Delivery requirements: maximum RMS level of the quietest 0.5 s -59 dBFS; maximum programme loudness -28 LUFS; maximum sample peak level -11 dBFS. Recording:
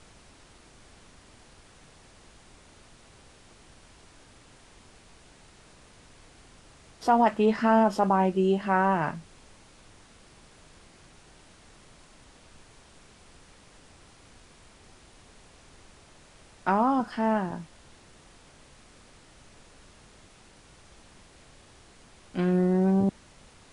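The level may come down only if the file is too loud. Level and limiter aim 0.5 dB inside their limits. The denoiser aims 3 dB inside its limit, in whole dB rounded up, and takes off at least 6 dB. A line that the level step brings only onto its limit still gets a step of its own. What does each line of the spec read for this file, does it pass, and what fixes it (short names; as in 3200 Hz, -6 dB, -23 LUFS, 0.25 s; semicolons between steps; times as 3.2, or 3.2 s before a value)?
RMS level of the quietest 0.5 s -55 dBFS: fail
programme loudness -25.0 LUFS: fail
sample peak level -9.0 dBFS: fail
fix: denoiser 6 dB, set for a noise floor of -55 dBFS; gain -3.5 dB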